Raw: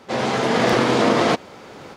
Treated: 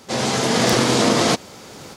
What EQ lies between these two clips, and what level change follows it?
tone controls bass +5 dB, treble +15 dB; -1.5 dB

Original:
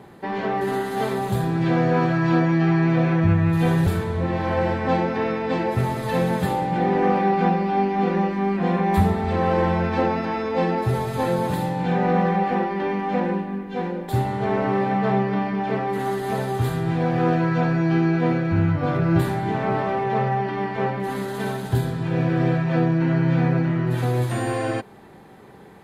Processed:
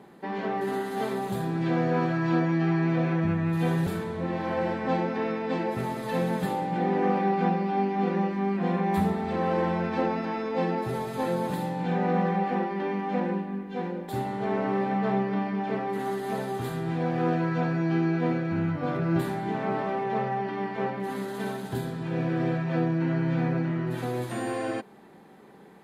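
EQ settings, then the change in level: resonant low shelf 140 Hz -8.5 dB, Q 1.5; -6.0 dB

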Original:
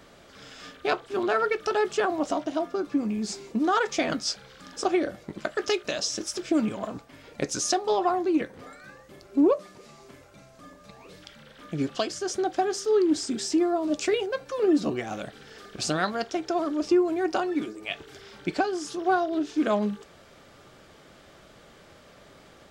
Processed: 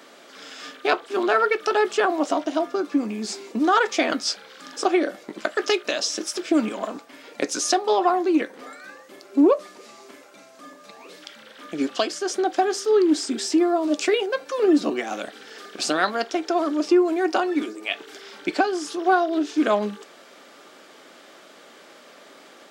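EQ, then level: Chebyshev high-pass 250 Hz, order 3; dynamic bell 6.6 kHz, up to -4 dB, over -45 dBFS, Q 1.2; bass shelf 430 Hz -3.5 dB; +6.5 dB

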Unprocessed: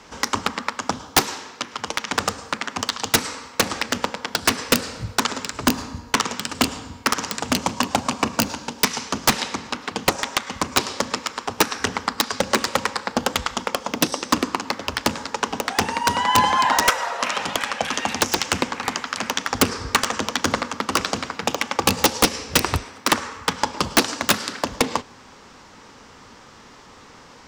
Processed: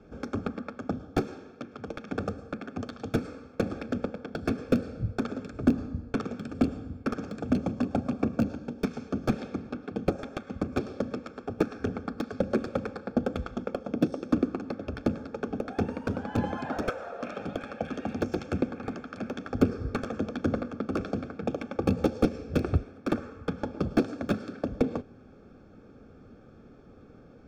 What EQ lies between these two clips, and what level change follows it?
boxcar filter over 45 samples; 0.0 dB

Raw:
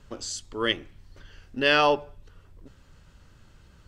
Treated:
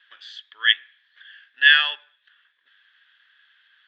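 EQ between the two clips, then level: resonant high-pass 1.7 kHz, resonance Q 12; resonant low-pass 3.4 kHz, resonance Q 11; distance through air 130 m; -7.5 dB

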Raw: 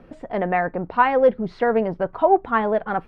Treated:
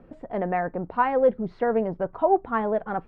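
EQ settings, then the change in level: treble shelf 2 kHz -11 dB; -3.0 dB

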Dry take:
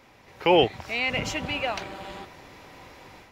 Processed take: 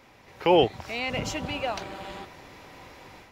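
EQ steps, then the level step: dynamic bell 2.2 kHz, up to -6 dB, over -39 dBFS, Q 1.3; 0.0 dB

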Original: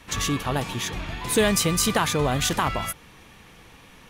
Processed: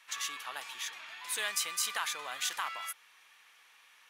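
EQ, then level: Chebyshev high-pass 1.4 kHz, order 2; -8.0 dB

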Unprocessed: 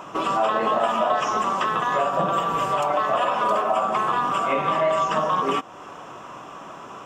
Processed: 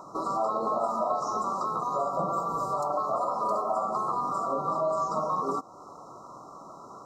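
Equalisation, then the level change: brick-wall FIR band-stop 1.4–3.8 kHz; -6.5 dB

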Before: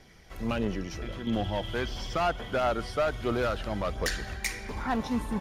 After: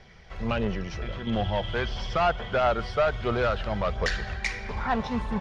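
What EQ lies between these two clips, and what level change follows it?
low-pass 5.1 kHz 12 dB/octave; distance through air 53 m; peaking EQ 290 Hz -12.5 dB 0.46 oct; +4.5 dB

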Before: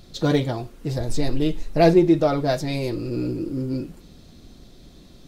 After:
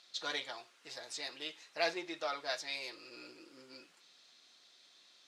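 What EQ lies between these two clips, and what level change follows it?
high-pass 1.4 kHz 12 dB/octave; low-pass 6.7 kHz 12 dB/octave; -4.5 dB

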